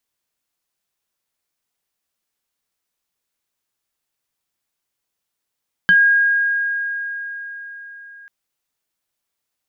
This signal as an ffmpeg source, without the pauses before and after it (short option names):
-f lavfi -i "aevalsrc='0.398*pow(10,-3*t/4.61)*sin(2*PI*1630*t+0.58*pow(10,-3*t/0.13)*sin(2*PI*0.89*1630*t))':d=2.39:s=44100"